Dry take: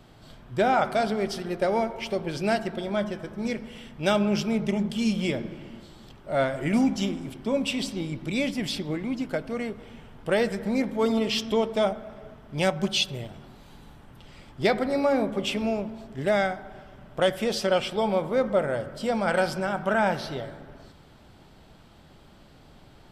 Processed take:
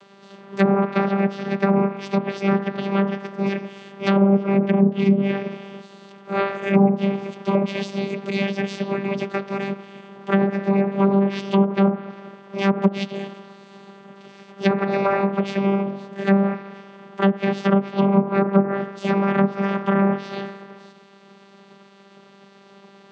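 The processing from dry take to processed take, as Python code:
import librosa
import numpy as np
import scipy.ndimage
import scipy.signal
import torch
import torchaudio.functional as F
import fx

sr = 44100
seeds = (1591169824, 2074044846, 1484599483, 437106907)

y = fx.spec_clip(x, sr, under_db=20)
y = fx.vocoder(y, sr, bands=16, carrier='saw', carrier_hz=197.0)
y = fx.env_lowpass_down(y, sr, base_hz=790.0, full_db=-19.5)
y = y * librosa.db_to_amplitude(7.5)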